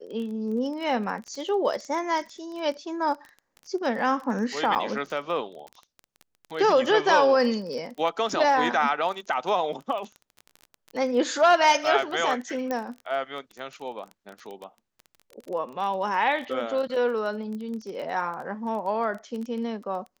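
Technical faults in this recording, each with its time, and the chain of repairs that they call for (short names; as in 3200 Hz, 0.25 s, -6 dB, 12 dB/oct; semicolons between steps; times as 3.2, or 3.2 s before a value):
crackle 22/s -33 dBFS
4.75–4.76 gap 8.5 ms
12.71 pop -16 dBFS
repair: de-click; interpolate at 4.75, 8.5 ms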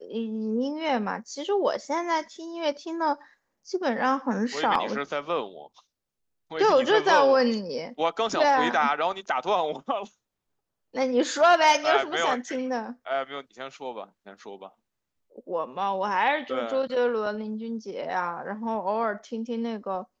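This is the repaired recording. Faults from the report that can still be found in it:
none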